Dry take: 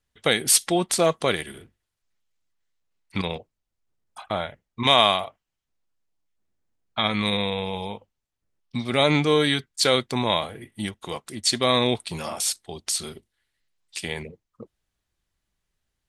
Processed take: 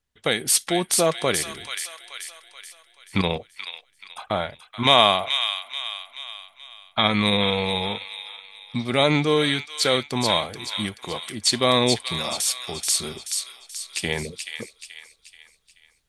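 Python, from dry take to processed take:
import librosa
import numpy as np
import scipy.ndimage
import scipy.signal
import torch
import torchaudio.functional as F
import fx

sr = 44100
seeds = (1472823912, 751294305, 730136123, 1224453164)

y = fx.echo_wet_highpass(x, sr, ms=431, feedback_pct=43, hz=1800.0, wet_db=-5.0)
y = fx.rider(y, sr, range_db=5, speed_s=2.0)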